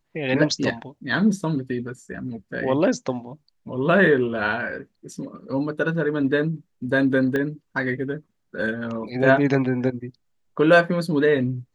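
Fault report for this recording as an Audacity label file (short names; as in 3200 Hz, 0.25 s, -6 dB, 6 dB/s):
7.360000	7.360000	pop -14 dBFS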